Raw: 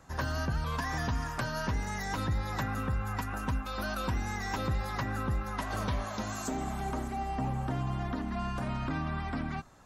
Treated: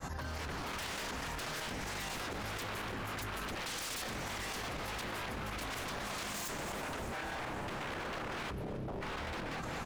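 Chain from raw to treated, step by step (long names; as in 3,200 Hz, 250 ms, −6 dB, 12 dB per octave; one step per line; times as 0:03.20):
fade in at the beginning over 0.60 s
0:03.55–0:04.02: parametric band 850 Hz +11.5 dB 2.2 octaves
0:05.98–0:06.81: comb filter 5.7 ms, depth 95%
0:07.80–0:08.51: low shelf with overshoot 270 Hz +9.5 dB, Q 1.5
0:08.51–0:09.01: gain on a spectral selection 400–9,900 Hz −26 dB
wave folding −36.5 dBFS
square-wave tremolo 4.1 Hz, depth 60%, duty 55%
repeating echo 220 ms, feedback 55%, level −15.5 dB
envelope flattener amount 100%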